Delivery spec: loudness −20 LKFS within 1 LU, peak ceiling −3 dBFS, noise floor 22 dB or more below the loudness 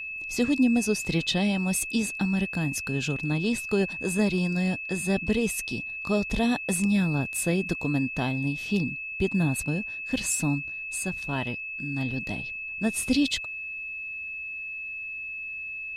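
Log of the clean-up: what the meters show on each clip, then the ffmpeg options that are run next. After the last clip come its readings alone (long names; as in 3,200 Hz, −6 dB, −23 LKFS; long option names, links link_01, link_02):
interfering tone 2,600 Hz; level of the tone −33 dBFS; integrated loudness −27.5 LKFS; sample peak −12.0 dBFS; target loudness −20.0 LKFS
→ -af "bandreject=frequency=2600:width=30"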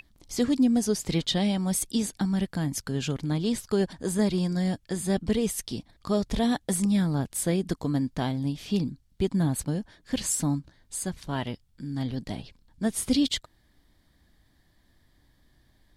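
interfering tone none found; integrated loudness −28.0 LKFS; sample peak −13.0 dBFS; target loudness −20.0 LKFS
→ -af "volume=8dB"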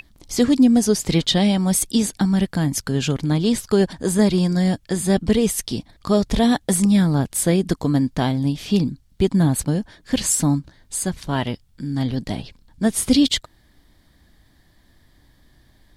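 integrated loudness −20.0 LKFS; sample peak −5.0 dBFS; background noise floor −57 dBFS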